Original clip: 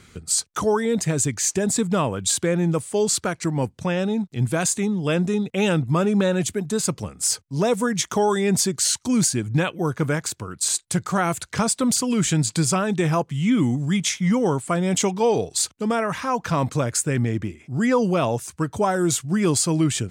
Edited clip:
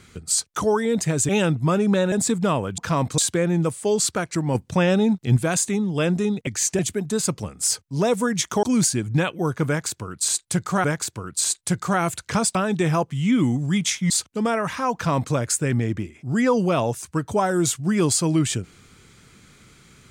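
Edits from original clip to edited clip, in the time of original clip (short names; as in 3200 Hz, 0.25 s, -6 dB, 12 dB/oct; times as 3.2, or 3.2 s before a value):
1.29–1.61 swap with 5.56–6.39
3.64–4.46 gain +4.5 dB
8.23–9.03 cut
10.08–11.24 loop, 2 plays
11.79–12.74 cut
14.29–15.55 cut
16.39–16.79 copy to 2.27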